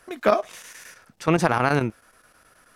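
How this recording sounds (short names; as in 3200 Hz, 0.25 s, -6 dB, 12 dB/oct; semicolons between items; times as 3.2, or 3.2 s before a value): chopped level 9.4 Hz, depth 60%, duty 85%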